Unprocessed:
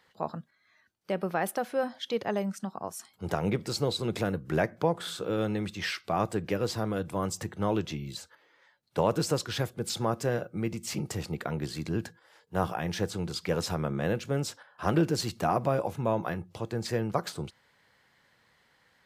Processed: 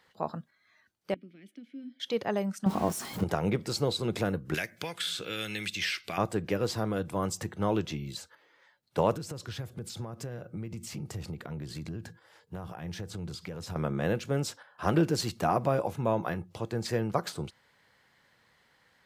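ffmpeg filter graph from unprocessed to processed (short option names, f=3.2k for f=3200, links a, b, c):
-filter_complex "[0:a]asettb=1/sr,asplit=3[a][b][c];[a]atrim=end=1.144[d];[b]atrim=start=1.14:end=2,asetpts=PTS-STARTPTS,afade=t=in:d=0.004:c=qsin,afade=t=out:st=0.856:d=0.004:c=qsin,acrossover=split=340|3000[e][f][g];[f]acompressor=threshold=-47dB:ratio=2.5:attack=3.2:release=140:knee=2.83:detection=peak[h];[e][h][g]amix=inputs=3:normalize=0,asplit=3[i][j][k];[i]bandpass=f=270:t=q:w=8,volume=0dB[l];[j]bandpass=f=2.29k:t=q:w=8,volume=-6dB[m];[k]bandpass=f=3.01k:t=q:w=8,volume=-9dB[n];[l][m][n]amix=inputs=3:normalize=0[o];[c]atrim=start=1.996[p];[d][o]acrossfade=d=0.004:c1=hsin:c2=qsin[q];[q][p]acrossfade=d=0.004:c1=qsin:c2=hsin,asettb=1/sr,asplit=3[r][s][t];[r]atrim=end=2.664[u];[s]atrim=start=2.66:end=3.24,asetpts=PTS-STARTPTS,afade=t=in:d=0.004:c=qsin,afade=t=out:st=0.576:d=0.004:c=qsin,aeval=exprs='val(0)+0.5*0.0126*sgn(val(0))':c=same,equalizer=f=200:w=0.33:g=11.5[v];[t]atrim=start=3.236[w];[u][v]acrossfade=d=0.004:c1=hsin:c2=qsin[x];[x][w]acrossfade=d=0.004:c1=qsin:c2=hsin,asettb=1/sr,asplit=3[y][z][aa];[y]atrim=end=4.544[ab];[z]atrim=start=4.54:end=6.18,asetpts=PTS-STARTPTS,afade=t=in:d=0.004:c=qsin,afade=t=out:st=1.636:d=0.004:c=qsin,highshelf=f=1.5k:t=q:w=1.5:g=12.5,bandreject=f=1.9k:w=24,acrossover=split=1100|6000[ac][ad][ae];[ac]acompressor=threshold=-39dB:ratio=4[af];[ad]acompressor=threshold=-34dB:ratio=4[ag];[ae]acompressor=threshold=-46dB:ratio=4[ah];[af][ag][ah]amix=inputs=3:normalize=0[ai];[aa]atrim=start=6.176[aj];[ab][ai]acrossfade=d=0.004:c1=hsin:c2=qsin[ak];[ak][aj]acrossfade=d=0.004:c1=qsin:c2=hsin,asettb=1/sr,asplit=3[al][am][an];[al]atrim=end=9.134[ao];[am]atrim=start=9.13:end=13.76,asetpts=PTS-STARTPTS,afade=t=in:d=0.004:c=qsin,afade=t=out:st=4.626:d=0.004:c=qsin,acompressor=threshold=-39dB:ratio=6:attack=3.2:release=140:knee=1:detection=peak,equalizer=f=93:w=0.61:g=8.5[ap];[an]atrim=start=13.756[aq];[ao][ap]acrossfade=d=0.004:c1=hsin:c2=qsin[ar];[ar][aq]acrossfade=d=0.004:c1=qsin:c2=hsin"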